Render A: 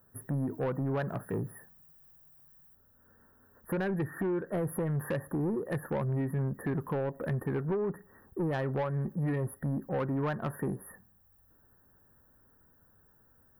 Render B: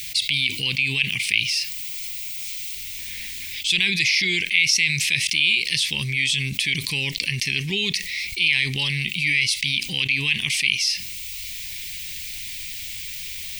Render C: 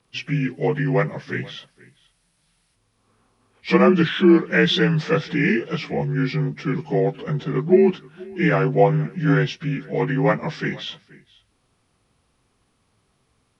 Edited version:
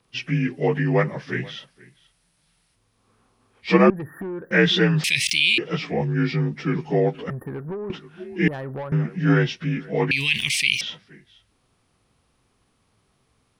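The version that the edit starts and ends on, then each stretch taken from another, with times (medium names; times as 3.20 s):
C
3.90–4.51 s: from A
5.04–5.58 s: from B
7.30–7.90 s: from A
8.48–8.92 s: from A
10.11–10.81 s: from B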